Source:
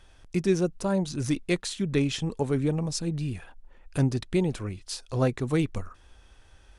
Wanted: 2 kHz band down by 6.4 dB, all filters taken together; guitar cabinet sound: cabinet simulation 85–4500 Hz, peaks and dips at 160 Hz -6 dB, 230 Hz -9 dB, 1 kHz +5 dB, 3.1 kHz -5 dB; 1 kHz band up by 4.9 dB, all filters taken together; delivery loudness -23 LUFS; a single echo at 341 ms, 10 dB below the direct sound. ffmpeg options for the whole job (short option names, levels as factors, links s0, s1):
-af "highpass=85,equalizer=f=160:t=q:w=4:g=-6,equalizer=f=230:t=q:w=4:g=-9,equalizer=f=1000:t=q:w=4:g=5,equalizer=f=3100:t=q:w=4:g=-5,lowpass=f=4500:w=0.5412,lowpass=f=4500:w=1.3066,equalizer=f=1000:t=o:g=5,equalizer=f=2000:t=o:g=-9,aecho=1:1:341:0.316,volume=2.37"